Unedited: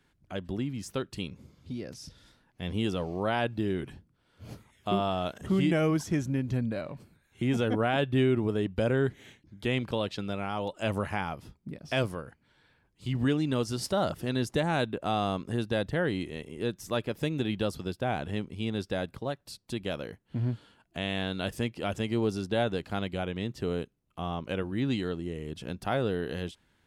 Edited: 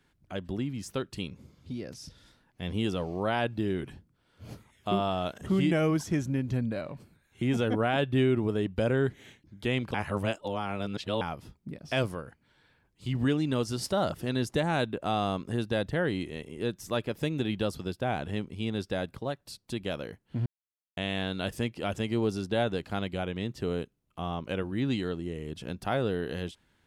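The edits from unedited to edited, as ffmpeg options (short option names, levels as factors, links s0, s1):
-filter_complex "[0:a]asplit=5[s0][s1][s2][s3][s4];[s0]atrim=end=9.942[s5];[s1]atrim=start=9.938:end=11.212,asetpts=PTS-STARTPTS,areverse[s6];[s2]atrim=start=11.208:end=20.46,asetpts=PTS-STARTPTS,afade=t=out:st=9.248:d=0.004:c=hsin[s7];[s3]atrim=start=20.46:end=20.97,asetpts=PTS-STARTPTS,volume=0[s8];[s4]atrim=start=20.97,asetpts=PTS-STARTPTS,afade=t=in:d=0.004:c=hsin[s9];[s5][s6]acrossfade=d=0.004:c1=hsin:c2=hsin[s10];[s7][s8][s9]concat=n=3:v=0:a=1[s11];[s10][s11]acrossfade=d=0.004:c1=hsin:c2=hsin"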